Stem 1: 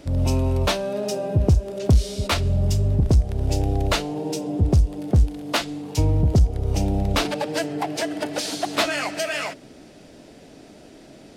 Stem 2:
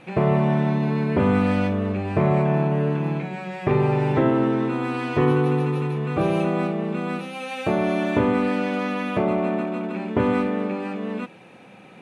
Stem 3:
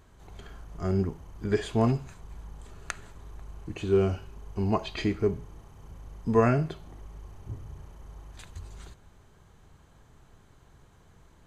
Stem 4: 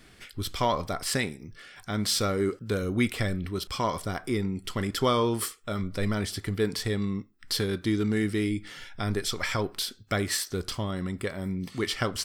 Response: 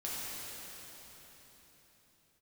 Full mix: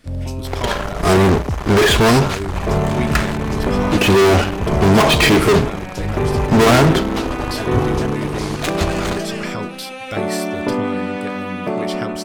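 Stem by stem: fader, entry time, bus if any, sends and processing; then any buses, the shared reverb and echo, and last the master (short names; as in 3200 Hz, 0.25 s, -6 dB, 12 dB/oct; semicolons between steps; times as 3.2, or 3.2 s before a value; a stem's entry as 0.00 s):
0.0 dB, 0.00 s, no send, echo send -21.5 dB, gate with hold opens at -36 dBFS; auto duck -6 dB, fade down 0.35 s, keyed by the fourth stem
+0.5 dB, 2.50 s, no send, no echo send, HPF 150 Hz
+3.0 dB, 0.25 s, no send, no echo send, tone controls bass -9 dB, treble -8 dB; fuzz box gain 43 dB, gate -52 dBFS
-0.5 dB, 0.00 s, no send, no echo send, dry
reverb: off
echo: echo 0.434 s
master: dry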